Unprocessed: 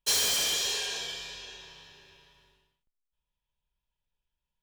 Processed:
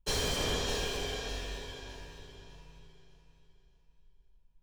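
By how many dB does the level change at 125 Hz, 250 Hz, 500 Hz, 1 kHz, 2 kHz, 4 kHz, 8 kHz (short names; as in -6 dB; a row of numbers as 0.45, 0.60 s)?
+15.0, +10.0, +6.5, +2.5, -3.0, -6.5, -10.0 dB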